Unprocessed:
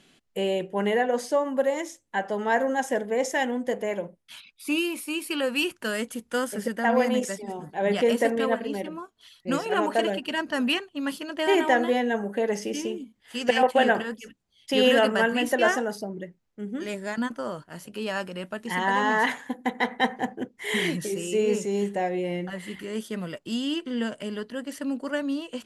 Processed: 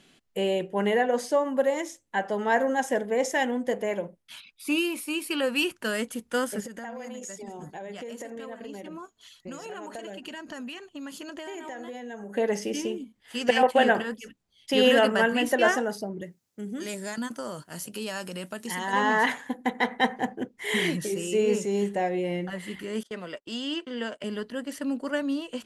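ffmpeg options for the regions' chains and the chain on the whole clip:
-filter_complex "[0:a]asettb=1/sr,asplit=3[a][b][c];[a]atrim=end=6.604[d];[b]atrim=start=6.6:end=12.37,asetpts=PTS-STARTPTS,afade=t=in:d=0.004:c=qsin,afade=t=out:st=5.766:d=0.004:c=qsin,equalizer=f=6.8k:w=7.2:g=13.5,acompressor=threshold=-35dB:ratio=10:attack=3.2:release=140:knee=1:detection=peak[e];[c]atrim=start=12.366[f];[d][e]acrossfade=d=0.004:c1=hsin:c2=qsin[g];[g][f]acrossfade=d=0.004:c1=qsin:c2=hsin,asettb=1/sr,asplit=3[h][i][j];[h]atrim=end=16.214[k];[i]atrim=start=16.21:end=18.93,asetpts=PTS-STARTPTS,afade=t=in:d=0.004:c=qsin,afade=t=out:st=2.716:d=0.004:c=qsin,highpass=100,bass=f=250:g=2,treble=f=4k:g=12,acompressor=threshold=-32dB:ratio=2:attack=3.2:release=140:knee=1:detection=peak[l];[j]atrim=start=18.926[m];[k][l]acrossfade=d=0.004:c1=hsin:c2=qsin[n];[n][m]acrossfade=d=0.004:c1=qsin:c2=hsin,asettb=1/sr,asplit=3[o][p][q];[o]atrim=end=23.034[r];[p]atrim=start=23.03:end=24.24,asetpts=PTS-STARTPTS,afade=t=in:d=0.004:c=qsin,afade=t=out:st=1.206:d=0.004:c=qsin,acrossover=split=300 7900:gain=0.224 1 0.2[s][t][u];[s][t][u]amix=inputs=3:normalize=0,agate=range=-20dB:threshold=-46dB:ratio=16:release=100:detection=peak[v];[q]atrim=start=24.236[w];[r][v]acrossfade=d=0.004:c1=hsin:c2=qsin[x];[x][w]acrossfade=d=0.004:c1=qsin:c2=hsin"

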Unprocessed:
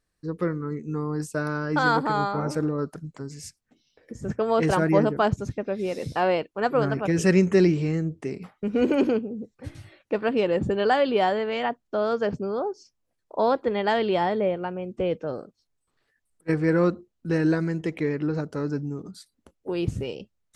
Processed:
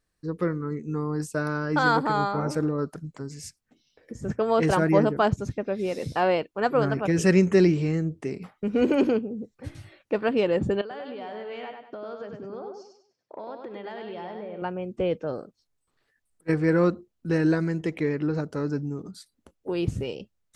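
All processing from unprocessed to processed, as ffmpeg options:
-filter_complex "[0:a]asettb=1/sr,asplit=3[a][b][c];[a]atrim=end=10.814[d];[b]atrim=start=10.81:end=14.62,asetpts=PTS-STARTPTS,afade=t=in:d=0.004:c=qsin,afade=t=out:st=3.806:d=0.004:c=qsin,acompressor=threshold=-34dB:ratio=20:attack=3.2:release=140:knee=1:detection=peak,highpass=130,lowpass=4.7k,aecho=1:1:98|196|294|392:0.562|0.202|0.0729|0.0262,atrim=end_sample=168021[e];[c]atrim=start=14.616[f];[d][e]acrossfade=d=0.004:c1=hsin:c2=qsin[g];[g][f]acrossfade=d=0.004:c1=qsin:c2=hsin"

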